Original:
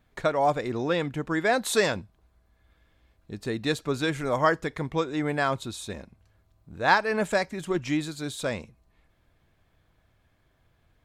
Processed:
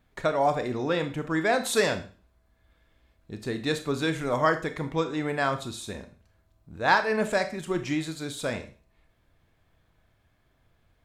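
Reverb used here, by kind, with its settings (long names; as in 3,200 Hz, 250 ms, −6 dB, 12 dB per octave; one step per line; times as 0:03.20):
four-comb reverb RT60 0.39 s, combs from 25 ms, DRR 8 dB
level −1 dB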